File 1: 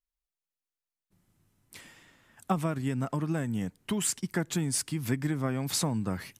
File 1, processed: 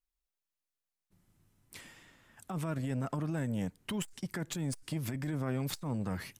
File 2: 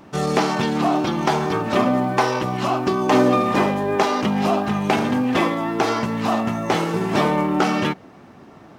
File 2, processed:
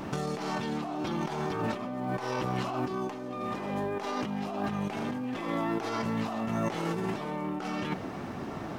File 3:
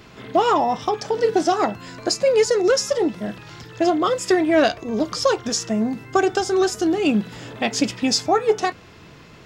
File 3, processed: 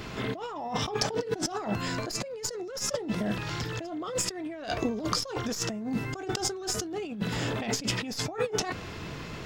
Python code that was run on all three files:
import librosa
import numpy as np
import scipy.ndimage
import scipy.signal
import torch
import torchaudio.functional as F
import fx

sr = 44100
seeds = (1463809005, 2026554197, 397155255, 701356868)

y = fx.tracing_dist(x, sr, depth_ms=0.025)
y = fx.low_shelf(y, sr, hz=62.0, db=5.0)
y = fx.over_compress(y, sr, threshold_db=-30.0, ratio=-1.0)
y = fx.transformer_sat(y, sr, knee_hz=330.0)
y = F.gain(torch.from_numpy(y), -2.5).numpy()